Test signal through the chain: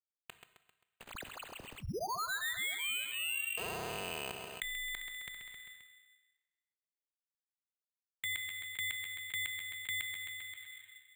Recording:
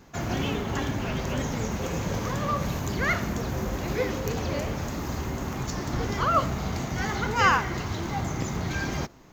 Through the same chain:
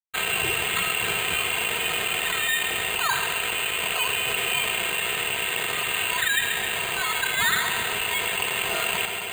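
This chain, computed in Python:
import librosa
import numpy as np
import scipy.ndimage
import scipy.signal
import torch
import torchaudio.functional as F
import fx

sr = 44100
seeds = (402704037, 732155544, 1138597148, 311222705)

p1 = fx.rattle_buzz(x, sr, strikes_db=-33.0, level_db=-30.0)
p2 = fx.highpass(p1, sr, hz=360.0, slope=6)
p3 = fx.dynamic_eq(p2, sr, hz=2200.0, q=0.78, threshold_db=-42.0, ratio=4.0, max_db=4)
p4 = p3 + 0.85 * np.pad(p3, (int(3.5 * sr / 1000.0), 0))[:len(p3)]
p5 = fx.rider(p4, sr, range_db=3, speed_s=2.0)
p6 = np.sign(p5) * np.maximum(np.abs(p5) - 10.0 ** (-38.5 / 20.0), 0.0)
p7 = fx.air_absorb(p6, sr, metres=310.0)
p8 = p7 + fx.echo_feedback(p7, sr, ms=132, feedback_pct=48, wet_db=-16.0, dry=0)
p9 = fx.rev_plate(p8, sr, seeds[0], rt60_s=1.5, hf_ratio=0.75, predelay_ms=0, drr_db=18.0)
p10 = fx.freq_invert(p9, sr, carrier_hz=3000)
p11 = np.repeat(p10[::8], 8)[:len(p10)]
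p12 = fx.env_flatten(p11, sr, amount_pct=70)
y = p12 * librosa.db_to_amplitude(-7.0)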